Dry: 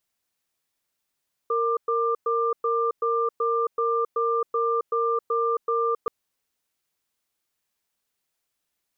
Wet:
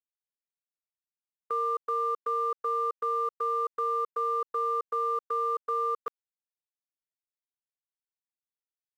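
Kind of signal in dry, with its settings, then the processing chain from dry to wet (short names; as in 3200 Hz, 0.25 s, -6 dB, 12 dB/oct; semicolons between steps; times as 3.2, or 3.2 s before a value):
cadence 462 Hz, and 1190 Hz, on 0.27 s, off 0.11 s, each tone -23.5 dBFS 4.58 s
crossover distortion -54 dBFS; gate with hold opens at -20 dBFS; HPF 1100 Hz 6 dB/oct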